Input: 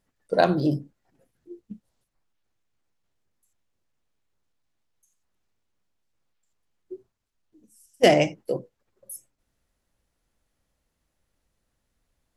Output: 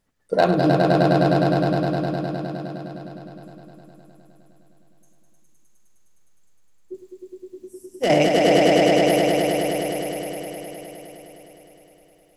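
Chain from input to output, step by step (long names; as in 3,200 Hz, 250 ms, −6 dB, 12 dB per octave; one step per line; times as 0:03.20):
in parallel at −9 dB: wave folding −12.5 dBFS
on the sum: echo that builds up and dies away 103 ms, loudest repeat 5, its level −4 dB
0:06.94–0:08.10: multiband upward and downward compressor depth 40%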